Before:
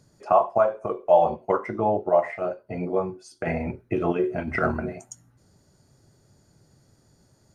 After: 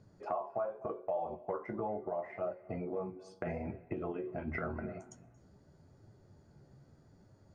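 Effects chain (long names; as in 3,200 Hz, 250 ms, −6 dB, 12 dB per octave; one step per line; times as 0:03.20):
Bessel low-pass filter 5,700 Hz, order 2
high-shelf EQ 2,500 Hz −11.5 dB
in parallel at −1 dB: brickwall limiter −18 dBFS, peak gain reduction 11 dB
on the sum: downward compressor 4 to 1, threshold −30 dBFS, peak gain reduction 16 dB
flanger 0.82 Hz, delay 9.2 ms, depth 6.3 ms, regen +42%
on a send at −19 dB: convolution reverb RT60 0.75 s, pre-delay 225 ms
on the sum: level −2.5 dB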